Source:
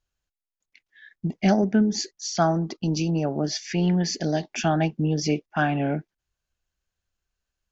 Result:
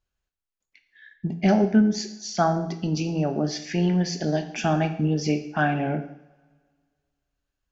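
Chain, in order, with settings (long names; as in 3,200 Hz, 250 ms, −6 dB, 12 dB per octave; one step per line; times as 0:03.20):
high-shelf EQ 4,600 Hz −7 dB
coupled-rooms reverb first 0.66 s, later 1.9 s, from −20 dB, DRR 6.5 dB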